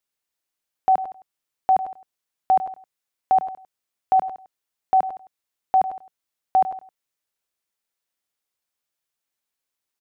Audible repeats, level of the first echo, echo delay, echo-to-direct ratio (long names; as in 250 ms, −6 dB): 3, −12.5 dB, 100 ms, −11.5 dB